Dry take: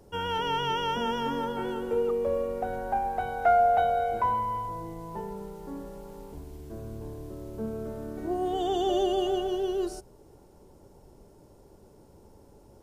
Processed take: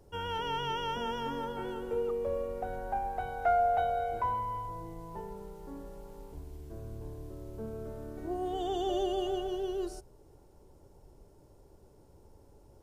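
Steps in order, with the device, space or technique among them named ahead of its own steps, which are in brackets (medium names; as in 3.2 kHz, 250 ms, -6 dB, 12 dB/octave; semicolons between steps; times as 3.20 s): low shelf boost with a cut just above (bass shelf 97 Hz +6.5 dB; peaking EQ 210 Hz -5 dB 0.51 oct); trim -5.5 dB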